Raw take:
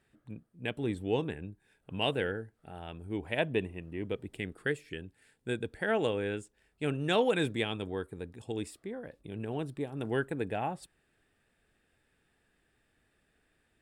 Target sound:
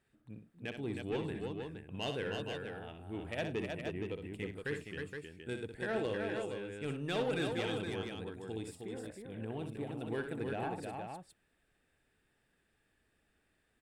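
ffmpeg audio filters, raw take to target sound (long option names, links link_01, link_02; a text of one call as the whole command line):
ffmpeg -i in.wav -af "asoftclip=type=tanh:threshold=-23.5dB,aecho=1:1:63|102|314|468:0.422|0.106|0.596|0.501,volume=-5.5dB" out.wav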